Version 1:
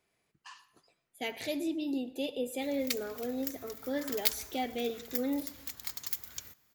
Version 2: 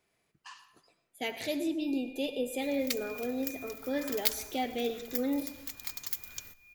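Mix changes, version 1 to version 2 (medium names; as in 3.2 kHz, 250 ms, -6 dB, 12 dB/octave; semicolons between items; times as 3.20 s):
speech: send +7.0 dB; first sound: unmuted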